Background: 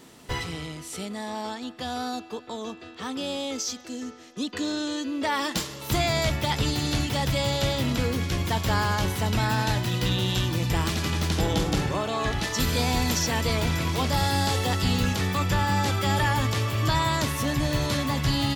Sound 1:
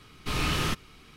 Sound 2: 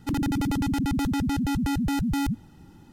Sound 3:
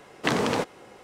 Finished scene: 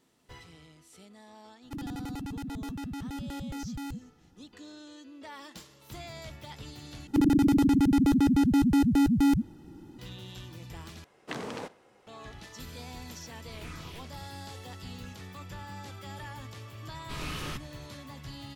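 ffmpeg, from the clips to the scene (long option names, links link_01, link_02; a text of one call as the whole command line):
ffmpeg -i bed.wav -i cue0.wav -i cue1.wav -i cue2.wav -filter_complex "[2:a]asplit=2[link_01][link_02];[1:a]asplit=2[link_03][link_04];[0:a]volume=-19dB[link_05];[link_02]equalizer=frequency=330:width=1.5:gain=10.5[link_06];[3:a]asplit=2[link_07][link_08];[link_08]adelay=65,lowpass=frequency=4900:poles=1,volume=-19.5dB,asplit=2[link_09][link_10];[link_10]adelay=65,lowpass=frequency=4900:poles=1,volume=0.47,asplit=2[link_11][link_12];[link_12]adelay=65,lowpass=frequency=4900:poles=1,volume=0.47,asplit=2[link_13][link_14];[link_14]adelay=65,lowpass=frequency=4900:poles=1,volume=0.47[link_15];[link_07][link_09][link_11][link_13][link_15]amix=inputs=5:normalize=0[link_16];[link_03]asplit=2[link_17][link_18];[link_18]afreqshift=-2.7[link_19];[link_17][link_19]amix=inputs=2:normalize=1[link_20];[link_05]asplit=3[link_21][link_22][link_23];[link_21]atrim=end=7.074[link_24];[link_06]atrim=end=2.92,asetpts=PTS-STARTPTS,volume=-3dB[link_25];[link_22]atrim=start=9.986:end=11.044[link_26];[link_16]atrim=end=1.03,asetpts=PTS-STARTPTS,volume=-13dB[link_27];[link_23]atrim=start=12.066[link_28];[link_01]atrim=end=2.92,asetpts=PTS-STARTPTS,volume=-12dB,afade=type=in:duration=0.004:curve=hsin,afade=type=out:start_time=2.916:duration=0.004:curve=hsin,adelay=1640[link_29];[link_20]atrim=end=1.16,asetpts=PTS-STARTPTS,volume=-16dB,afade=type=in:duration=0.004:curve=hsin,afade=type=out:start_time=1.156:duration=0.004:curve=hsin,adelay=13250[link_30];[link_04]atrim=end=1.16,asetpts=PTS-STARTPTS,volume=-9.5dB,afade=type=in:duration=0.004:curve=hsin,afade=type=out:start_time=1.156:duration=0.004:curve=hsin,adelay=16830[link_31];[link_24][link_25]acrossfade=duration=0.004:curve1=hsin:curve2=hsin[link_32];[link_32][link_26]acrossfade=duration=0.004:curve1=hsin:curve2=hsin[link_33];[link_33][link_27]acrossfade=duration=0.004:curve1=hsin:curve2=hsin[link_34];[link_34][link_28]acrossfade=duration=0.004:curve1=hsin:curve2=hsin[link_35];[link_35][link_29][link_30][link_31]amix=inputs=4:normalize=0" out.wav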